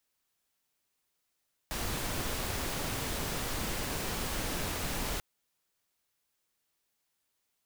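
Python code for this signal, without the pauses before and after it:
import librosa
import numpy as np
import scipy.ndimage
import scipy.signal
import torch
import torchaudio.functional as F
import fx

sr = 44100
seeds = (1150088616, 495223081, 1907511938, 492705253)

y = fx.noise_colour(sr, seeds[0], length_s=3.49, colour='pink', level_db=-34.5)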